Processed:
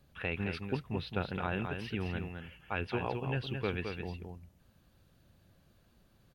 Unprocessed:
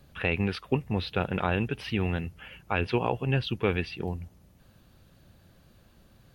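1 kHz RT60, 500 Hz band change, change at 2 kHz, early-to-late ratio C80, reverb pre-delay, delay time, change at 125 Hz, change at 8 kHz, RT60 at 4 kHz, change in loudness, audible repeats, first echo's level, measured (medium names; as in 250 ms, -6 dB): no reverb, -7.5 dB, -6.5 dB, no reverb, no reverb, 215 ms, -7.5 dB, no reading, no reverb, -7.5 dB, 1, -6.0 dB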